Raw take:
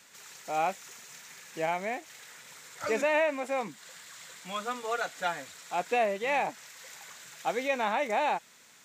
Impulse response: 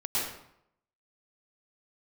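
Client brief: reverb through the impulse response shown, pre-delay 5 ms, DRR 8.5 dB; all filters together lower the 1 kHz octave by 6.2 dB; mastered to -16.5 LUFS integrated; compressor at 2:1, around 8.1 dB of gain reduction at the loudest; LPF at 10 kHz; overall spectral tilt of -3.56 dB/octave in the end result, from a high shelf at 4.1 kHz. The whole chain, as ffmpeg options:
-filter_complex "[0:a]lowpass=10000,equalizer=f=1000:t=o:g=-8.5,highshelf=f=4100:g=-8.5,acompressor=threshold=0.00891:ratio=2,asplit=2[s0][s1];[1:a]atrim=start_sample=2205,adelay=5[s2];[s1][s2]afir=irnorm=-1:irlink=0,volume=0.15[s3];[s0][s3]amix=inputs=2:normalize=0,volume=17.8"

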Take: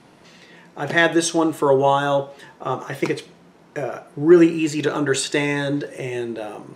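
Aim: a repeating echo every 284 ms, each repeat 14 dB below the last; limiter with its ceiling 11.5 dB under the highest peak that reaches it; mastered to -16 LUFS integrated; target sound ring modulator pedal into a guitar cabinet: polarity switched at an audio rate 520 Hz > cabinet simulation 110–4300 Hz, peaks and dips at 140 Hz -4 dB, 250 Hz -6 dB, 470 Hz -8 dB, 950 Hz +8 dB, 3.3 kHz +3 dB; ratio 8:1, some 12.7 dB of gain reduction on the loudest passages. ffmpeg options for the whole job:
-af "acompressor=threshold=0.1:ratio=8,alimiter=limit=0.0944:level=0:latency=1,aecho=1:1:284|568:0.2|0.0399,aeval=exprs='val(0)*sgn(sin(2*PI*520*n/s))':c=same,highpass=110,equalizer=f=140:t=q:w=4:g=-4,equalizer=f=250:t=q:w=4:g=-6,equalizer=f=470:t=q:w=4:g=-8,equalizer=f=950:t=q:w=4:g=8,equalizer=f=3300:t=q:w=4:g=3,lowpass=f=4300:w=0.5412,lowpass=f=4300:w=1.3066,volume=3.98"

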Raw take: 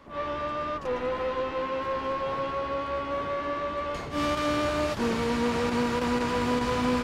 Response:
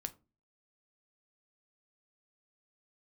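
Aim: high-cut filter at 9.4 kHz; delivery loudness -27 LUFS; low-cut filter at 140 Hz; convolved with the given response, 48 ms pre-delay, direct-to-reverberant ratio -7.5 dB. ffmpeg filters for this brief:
-filter_complex "[0:a]highpass=140,lowpass=9400,asplit=2[s0][s1];[1:a]atrim=start_sample=2205,adelay=48[s2];[s1][s2]afir=irnorm=-1:irlink=0,volume=2.99[s3];[s0][s3]amix=inputs=2:normalize=0,volume=0.501"

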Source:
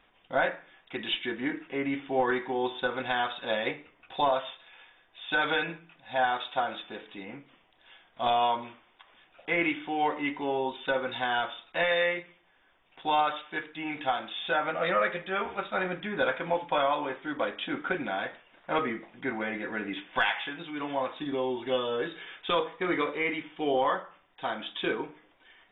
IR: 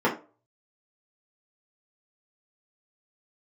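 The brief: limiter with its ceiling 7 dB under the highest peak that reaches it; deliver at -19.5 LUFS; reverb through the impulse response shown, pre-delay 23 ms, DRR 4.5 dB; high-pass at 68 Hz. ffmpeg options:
-filter_complex "[0:a]highpass=68,alimiter=limit=0.1:level=0:latency=1,asplit=2[s0][s1];[1:a]atrim=start_sample=2205,adelay=23[s2];[s1][s2]afir=irnorm=-1:irlink=0,volume=0.1[s3];[s0][s3]amix=inputs=2:normalize=0,volume=3.35"

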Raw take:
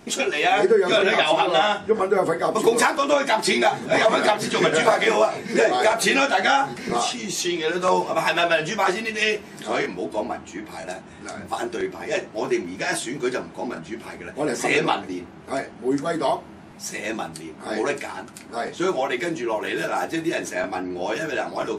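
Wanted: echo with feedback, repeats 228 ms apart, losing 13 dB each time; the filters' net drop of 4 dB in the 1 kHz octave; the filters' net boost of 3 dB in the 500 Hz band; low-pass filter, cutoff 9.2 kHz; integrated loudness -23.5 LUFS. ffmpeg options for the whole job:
-af "lowpass=9200,equalizer=f=500:t=o:g=6.5,equalizer=f=1000:t=o:g=-9,aecho=1:1:228|456|684:0.224|0.0493|0.0108,volume=0.75"

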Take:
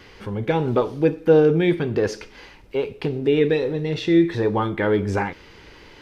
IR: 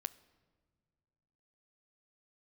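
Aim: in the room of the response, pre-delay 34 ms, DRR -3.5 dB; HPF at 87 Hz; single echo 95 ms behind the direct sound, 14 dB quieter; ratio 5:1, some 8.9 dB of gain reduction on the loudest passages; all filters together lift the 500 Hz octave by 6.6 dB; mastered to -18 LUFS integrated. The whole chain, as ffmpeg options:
-filter_complex "[0:a]highpass=87,equalizer=f=500:t=o:g=7.5,acompressor=threshold=0.224:ratio=5,aecho=1:1:95:0.2,asplit=2[s0][s1];[1:a]atrim=start_sample=2205,adelay=34[s2];[s1][s2]afir=irnorm=-1:irlink=0,volume=1.88[s3];[s0][s3]amix=inputs=2:normalize=0,volume=0.708"

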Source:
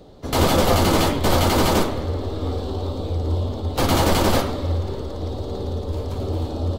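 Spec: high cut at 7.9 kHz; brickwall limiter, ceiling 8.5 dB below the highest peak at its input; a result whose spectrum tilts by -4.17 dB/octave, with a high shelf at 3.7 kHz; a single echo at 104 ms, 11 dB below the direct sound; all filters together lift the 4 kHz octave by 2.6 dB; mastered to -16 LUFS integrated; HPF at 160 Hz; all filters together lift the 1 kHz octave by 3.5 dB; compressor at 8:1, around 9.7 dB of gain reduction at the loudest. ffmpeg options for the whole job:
-af "highpass=160,lowpass=7900,equalizer=f=1000:t=o:g=4.5,highshelf=f=3700:g=-4.5,equalizer=f=4000:t=o:g=6,acompressor=threshold=0.0708:ratio=8,alimiter=limit=0.1:level=0:latency=1,aecho=1:1:104:0.282,volume=4.73"

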